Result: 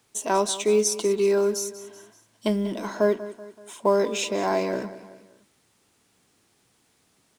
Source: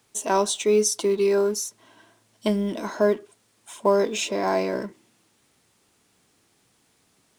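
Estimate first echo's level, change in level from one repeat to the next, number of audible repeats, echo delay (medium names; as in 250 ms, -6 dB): -15.5 dB, -6.0 dB, 3, 190 ms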